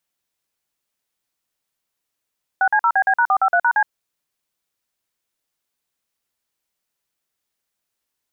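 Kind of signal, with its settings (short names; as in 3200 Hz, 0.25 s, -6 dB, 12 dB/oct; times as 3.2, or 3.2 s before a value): DTMF "6C0BB#453#C", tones 68 ms, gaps 47 ms, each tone -15.5 dBFS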